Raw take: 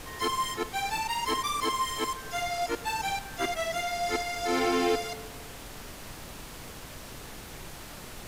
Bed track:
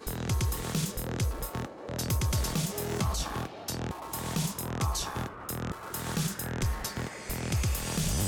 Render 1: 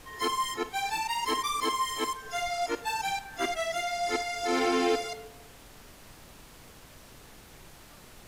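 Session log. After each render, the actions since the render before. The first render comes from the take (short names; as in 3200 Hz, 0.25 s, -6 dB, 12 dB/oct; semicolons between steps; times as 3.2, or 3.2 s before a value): noise print and reduce 8 dB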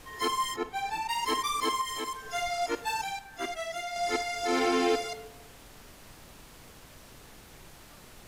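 0.56–1.09 high shelf 2500 Hz -9 dB; 1.81–2.27 compressor 3:1, threshold -31 dBFS; 3.04–3.96 gain -4.5 dB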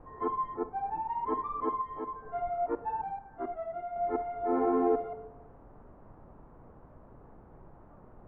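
LPF 1100 Hz 24 dB/oct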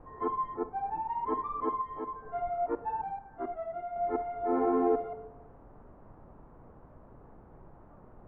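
nothing audible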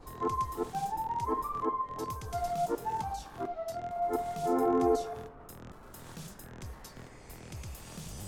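add bed track -14.5 dB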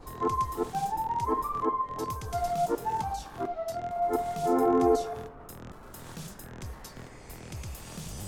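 gain +3.5 dB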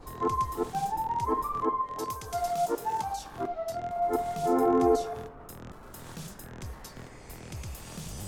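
1.86–3.24 tone controls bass -7 dB, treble +3 dB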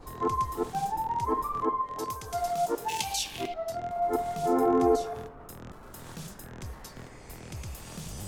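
2.88–3.54 resonant high shelf 1900 Hz +12 dB, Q 3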